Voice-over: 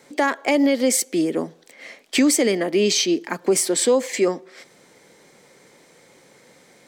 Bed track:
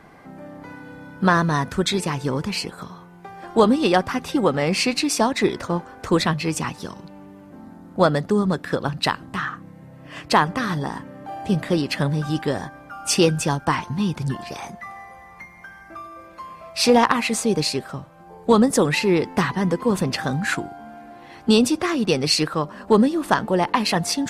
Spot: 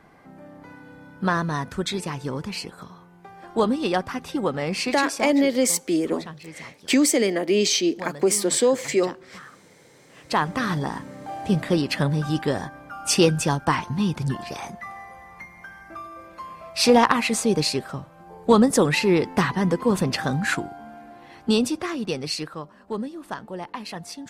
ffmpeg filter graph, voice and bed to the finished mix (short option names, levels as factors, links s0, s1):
-filter_complex "[0:a]adelay=4750,volume=0.841[s0];[1:a]volume=3.76,afade=t=out:st=4.94:d=0.5:silence=0.251189,afade=t=in:st=10.13:d=0.49:silence=0.141254,afade=t=out:st=20.49:d=2.3:silence=0.211349[s1];[s0][s1]amix=inputs=2:normalize=0"